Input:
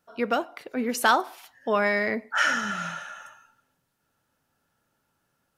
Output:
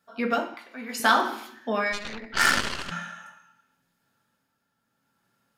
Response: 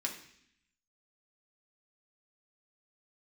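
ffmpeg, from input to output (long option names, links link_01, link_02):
-filter_complex "[1:a]atrim=start_sample=2205,asetrate=41013,aresample=44100[link_01];[0:a][link_01]afir=irnorm=-1:irlink=0,tremolo=f=0.74:d=0.48,asettb=1/sr,asplit=3[link_02][link_03][link_04];[link_02]atrim=end=0.544[link_05];[link_03]atrim=start=0.54:end=1,asetpts=PTS-STARTPTS,afade=type=in:duration=0.004:curve=qsin,afade=type=out:start_time=0.456:duration=0.004:curve=qsin,lowshelf=frequency=610:width_type=q:width=1.5:gain=-8[link_06];[link_04]atrim=start=0.996[link_07];[link_05][link_06]acrossfade=duration=0.004:curve1=hsin:curve2=qsin[link_08];[link_08][link_07]acrossfade=duration=0.004:curve1=qsin:curve2=hsin,asplit=3[link_09][link_10][link_11];[link_09]afade=type=out:start_time=1.92:duration=0.02[link_12];[link_10]aeval=exprs='0.316*(cos(1*acos(clip(val(0)/0.316,-1,1)))-cos(1*PI/2))+0.0224*(cos(6*acos(clip(val(0)/0.316,-1,1)))-cos(6*PI/2))+0.0708*(cos(7*acos(clip(val(0)/0.316,-1,1)))-cos(7*PI/2))+0.0398*(cos(8*acos(clip(val(0)/0.316,-1,1)))-cos(8*PI/2))':channel_layout=same,afade=type=in:start_time=1.92:duration=0.02,afade=type=out:start_time=2.9:duration=0.02[link_13];[link_11]afade=type=in:start_time=2.9:duration=0.02[link_14];[link_12][link_13][link_14]amix=inputs=3:normalize=0"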